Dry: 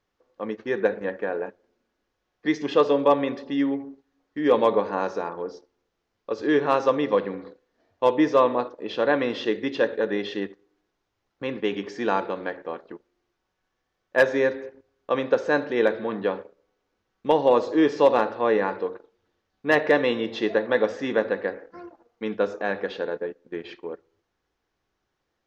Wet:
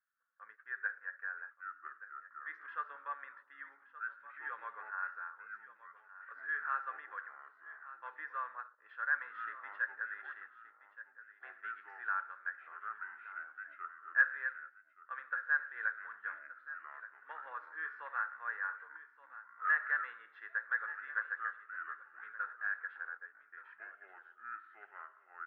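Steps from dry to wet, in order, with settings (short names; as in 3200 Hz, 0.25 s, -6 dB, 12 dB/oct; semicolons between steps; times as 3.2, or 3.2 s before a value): echoes that change speed 0.716 s, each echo -5 st, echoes 2, each echo -6 dB; Butterworth band-pass 1500 Hz, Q 3.8; on a send: echo 1.174 s -15 dB; on the sum: gain -2 dB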